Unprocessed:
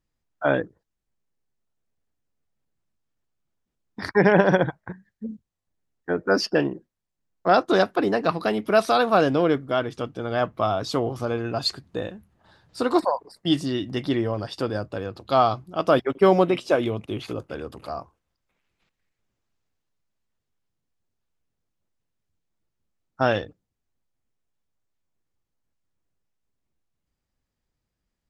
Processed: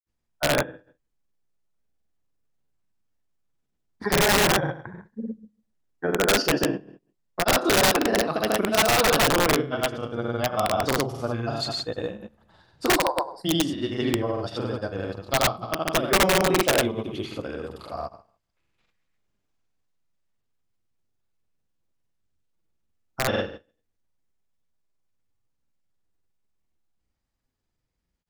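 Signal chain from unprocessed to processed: flutter echo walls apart 8.7 m, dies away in 0.44 s; granulator 100 ms, grains 20 per s, pitch spread up and down by 0 st; integer overflow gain 13 dB

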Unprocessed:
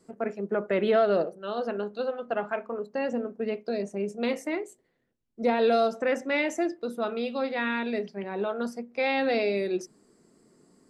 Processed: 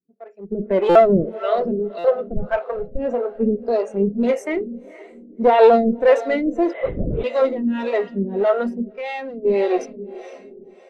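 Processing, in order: one-sided clip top -30 dBFS; 2.36–2.99 s: resonant low shelf 170 Hz +12 dB, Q 3; echo that smears into a reverb 474 ms, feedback 58%, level -12 dB; 6.73–7.24 s: LPC vocoder at 8 kHz whisper; 8.92–9.45 s: compression 1.5:1, threshold -53 dBFS, peak gain reduction 10 dB; harmonic tremolo 1.7 Hz, depth 100%, crossover 410 Hz; level rider gain up to 16 dB; buffer glitch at 0.89/1.98 s, samples 256, times 10; spectral contrast expander 1.5:1; trim +2.5 dB

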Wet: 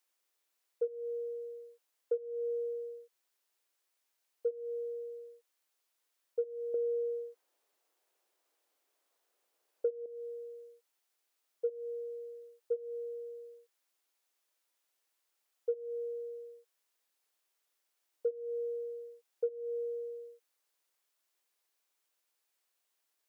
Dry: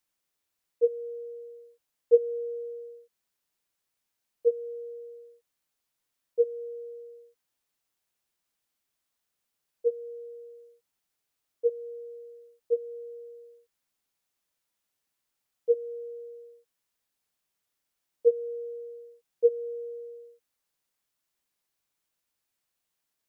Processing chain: high-pass 330 Hz 24 dB/octave; 6.74–10.06 s: peaking EQ 480 Hz +11 dB 2.4 oct; compression 20:1, threshold -31 dBFS, peak gain reduction 22 dB; trim +1 dB

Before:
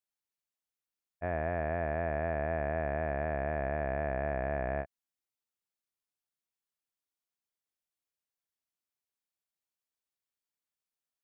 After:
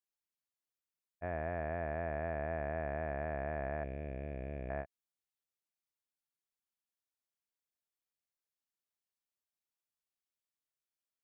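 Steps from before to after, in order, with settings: 3.84–4.70 s: high-order bell 1.1 kHz -15 dB; trim -5 dB

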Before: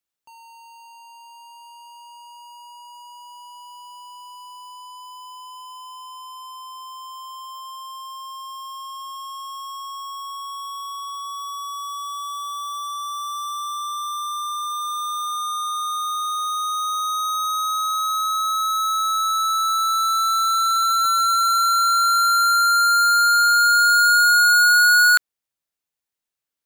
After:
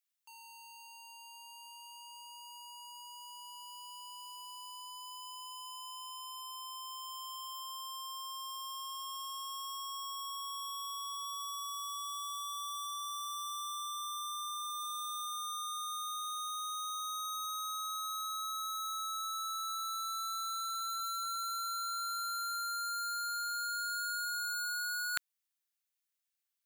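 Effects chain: high-pass 1.4 kHz 12 dB/octave; treble shelf 8.9 kHz +4.5 dB; reverse; compression 5:1, threshold -32 dBFS, peak gain reduction 18 dB; reverse; trim -3.5 dB

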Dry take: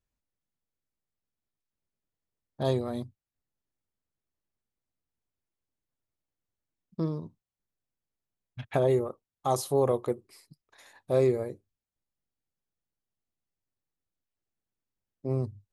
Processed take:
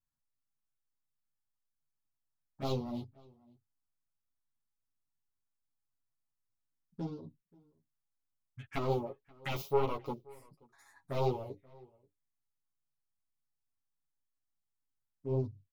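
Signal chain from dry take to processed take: self-modulated delay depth 0.8 ms; spectral replace 11.59–11.80 s, 1.3–3.8 kHz before; touch-sensitive phaser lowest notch 460 Hz, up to 1.7 kHz, full sweep at -30 dBFS; comb 7.3 ms, depth 61%; echo from a far wall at 91 m, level -25 dB; three-phase chorus; trim -2.5 dB

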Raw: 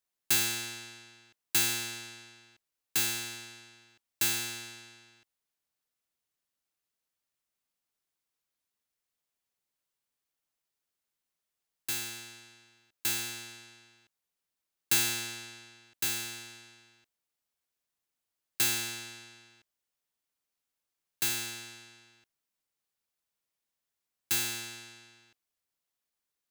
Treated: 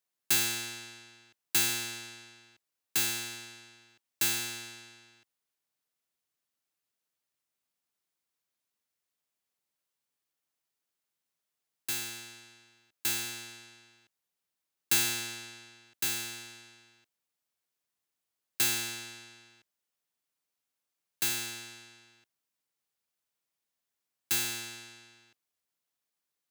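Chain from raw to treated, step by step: high-pass 86 Hz

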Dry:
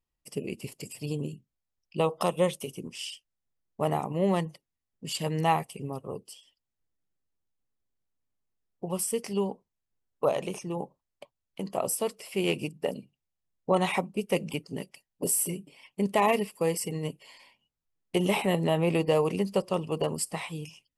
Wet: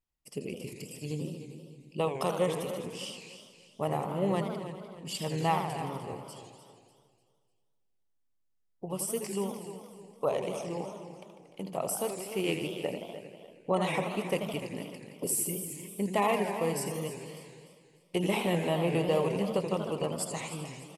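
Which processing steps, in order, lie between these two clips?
feedback delay 298 ms, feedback 37%, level -12.5 dB; modulated delay 80 ms, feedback 73%, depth 216 cents, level -8.5 dB; trim -4 dB

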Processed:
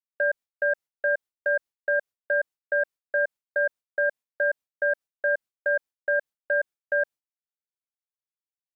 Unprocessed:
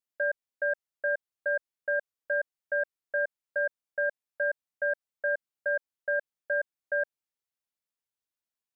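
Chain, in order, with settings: expander -41 dBFS; trim +4.5 dB

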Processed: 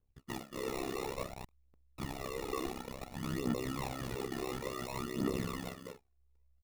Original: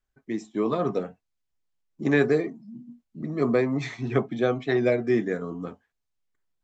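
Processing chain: 0.96–3.27 s: zero-crossing glitches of -15 dBFS; level-controlled noise filter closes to 2.1 kHz, open at -20 dBFS; treble shelf 5.2 kHz +11 dB; echo from a far wall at 39 m, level -10 dB; compressor with a negative ratio -28 dBFS, ratio -1; sample-and-hold 28×; saturation -30.5 dBFS, distortion -8 dB; phaser 0.57 Hz, delay 2.9 ms, feedback 60%; AM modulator 66 Hz, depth 90%; trim -2 dB

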